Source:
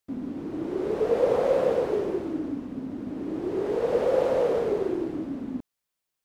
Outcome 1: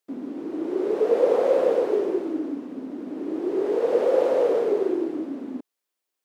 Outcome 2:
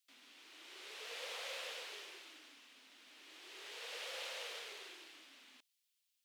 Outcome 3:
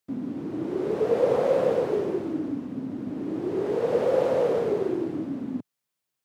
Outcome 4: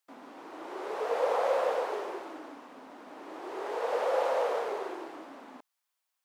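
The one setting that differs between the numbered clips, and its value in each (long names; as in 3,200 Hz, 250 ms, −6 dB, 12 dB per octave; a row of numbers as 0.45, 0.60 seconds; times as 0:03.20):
high-pass with resonance, frequency: 330, 3,000, 120, 860 Hertz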